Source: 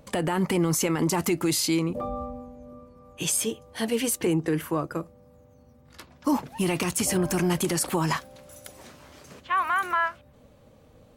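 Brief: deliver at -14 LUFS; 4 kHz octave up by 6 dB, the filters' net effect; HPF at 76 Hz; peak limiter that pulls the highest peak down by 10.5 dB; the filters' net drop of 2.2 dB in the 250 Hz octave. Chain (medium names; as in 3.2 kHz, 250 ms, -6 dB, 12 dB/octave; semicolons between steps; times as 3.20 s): high-pass 76 Hz; peaking EQ 250 Hz -3.5 dB; peaking EQ 4 kHz +8 dB; trim +16 dB; peak limiter -4 dBFS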